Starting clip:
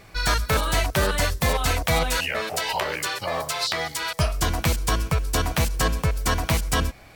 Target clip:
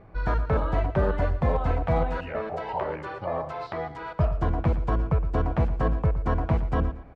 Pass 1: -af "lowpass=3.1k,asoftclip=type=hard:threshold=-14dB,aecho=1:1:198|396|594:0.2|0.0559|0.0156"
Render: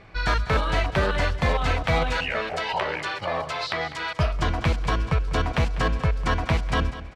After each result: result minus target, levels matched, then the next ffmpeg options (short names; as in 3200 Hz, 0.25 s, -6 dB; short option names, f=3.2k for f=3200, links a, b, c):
4000 Hz band +17.0 dB; echo 83 ms late
-af "lowpass=910,asoftclip=type=hard:threshold=-14dB,aecho=1:1:198|396|594:0.2|0.0559|0.0156"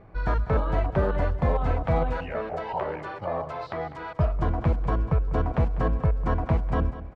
echo 83 ms late
-af "lowpass=910,asoftclip=type=hard:threshold=-14dB,aecho=1:1:115|230|345:0.2|0.0559|0.0156"